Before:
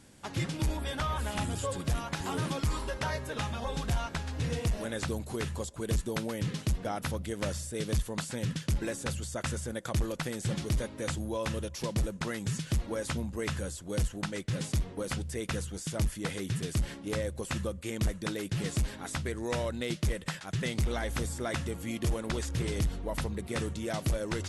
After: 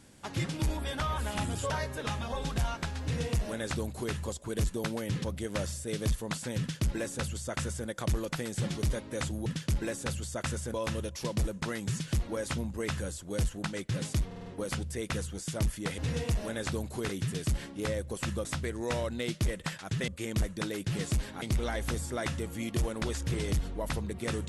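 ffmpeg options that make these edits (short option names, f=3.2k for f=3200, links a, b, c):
-filter_complex "[0:a]asplit=14[a][b][c][d][e][f][g][h][i][j][k][l][m][n];[a]atrim=end=1.702[o];[b]atrim=start=3.018:end=6.562[p];[c]atrim=start=7.108:end=11.332[q];[d]atrim=start=8.458:end=9.742[r];[e]atrim=start=11.328:end=14.902[s];[f]atrim=start=14.848:end=14.902[t];[g]atrim=start=14.848:end=14.902[u];[h]atrim=start=14.848:end=14.902[v];[i]atrim=start=14.848:end=16.372[w];[j]atrim=start=4.338:end=5.452[x];[k]atrim=start=16.368:end=17.732[y];[l]atrim=start=19.068:end=20.702[z];[m]atrim=start=17.728:end=19.072[aa];[n]atrim=start=20.698[ab];[o][p]acrossfade=d=0.004:c1=hsin:c2=hsin[ac];[ac][q]acrossfade=d=0.004:c1=hsin:c2=hsin[ad];[ad][r]acrossfade=d=0.004:c1=hsin:c2=hsin[ae];[ae][s]acrossfade=d=0.004:c1=hsin:c2=hsin[af];[af][t]acrossfade=d=0.004:c1=hsin:c2=hsin[ag];[ag][u]acrossfade=d=0.004:c1=hsin:c2=hsin[ah];[ah][v]acrossfade=d=0.004:c1=hsin:c2=hsin[ai];[ai][w]acrossfade=d=0.004:c1=hsin:c2=hsin[aj];[aj][x]acrossfade=d=0.004:c1=hsin:c2=hsin[ak];[ak][y]acrossfade=d=0.004:c1=hsin:c2=hsin[al];[al][z]acrossfade=d=0.004:c1=hsin:c2=hsin[am];[am][aa]acrossfade=d=0.004:c1=hsin:c2=hsin[an];[an][ab]acrossfade=d=0.004:c1=hsin:c2=hsin"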